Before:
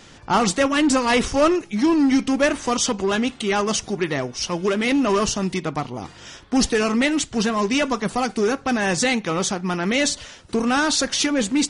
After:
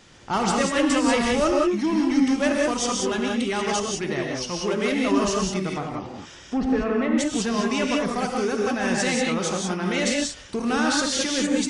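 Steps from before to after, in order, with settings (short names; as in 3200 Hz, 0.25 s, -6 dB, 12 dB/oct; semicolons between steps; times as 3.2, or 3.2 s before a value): 5.75–7.18 treble ducked by the level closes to 1600 Hz, closed at -19.5 dBFS; non-linear reverb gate 0.21 s rising, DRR -0.5 dB; gain -6 dB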